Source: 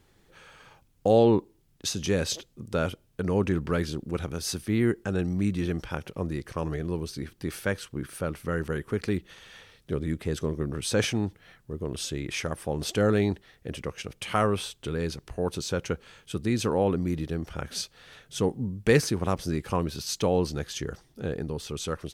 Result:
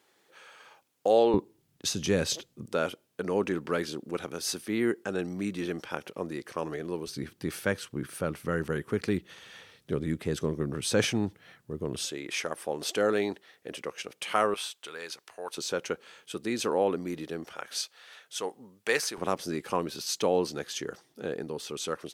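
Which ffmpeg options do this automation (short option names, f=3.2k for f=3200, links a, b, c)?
-af "asetnsamples=n=441:p=0,asendcmd='1.34 highpass f 110;2.66 highpass f 280;7.07 highpass f 120;12.06 highpass f 350;14.54 highpass f 840;15.58 highpass f 320;17.54 highpass f 670;19.18 highpass f 270',highpass=420"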